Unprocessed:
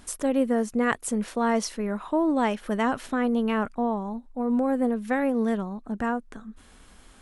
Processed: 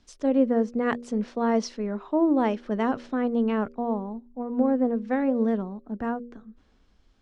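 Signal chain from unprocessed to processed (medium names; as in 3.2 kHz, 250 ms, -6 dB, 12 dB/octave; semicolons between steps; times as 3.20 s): Chebyshev low-pass 5.5 kHz, order 3; peaking EQ 340 Hz +8 dB 2.5 oct; de-hum 79.71 Hz, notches 7; three bands expanded up and down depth 40%; trim -5.5 dB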